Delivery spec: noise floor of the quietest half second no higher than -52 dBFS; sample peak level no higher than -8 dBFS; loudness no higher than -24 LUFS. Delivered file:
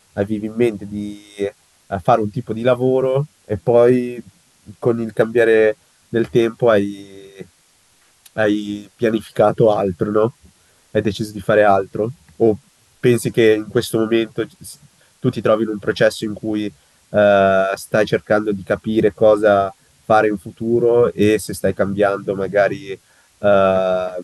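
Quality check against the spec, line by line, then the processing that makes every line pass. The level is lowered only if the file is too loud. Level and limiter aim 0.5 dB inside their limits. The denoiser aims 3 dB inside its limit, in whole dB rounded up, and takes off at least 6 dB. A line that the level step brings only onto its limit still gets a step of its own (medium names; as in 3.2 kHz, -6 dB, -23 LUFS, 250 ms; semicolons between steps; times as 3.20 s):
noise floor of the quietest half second -56 dBFS: pass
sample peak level -2.5 dBFS: fail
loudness -17.5 LUFS: fail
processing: trim -7 dB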